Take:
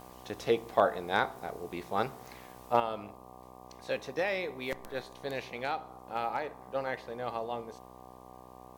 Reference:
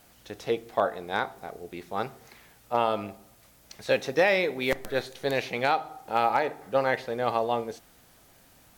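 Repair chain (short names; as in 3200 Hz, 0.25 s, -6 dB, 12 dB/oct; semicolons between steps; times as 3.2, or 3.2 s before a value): de-click; de-hum 62.8 Hz, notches 19; notch 750 Hz, Q 30; gain 0 dB, from 2.8 s +9.5 dB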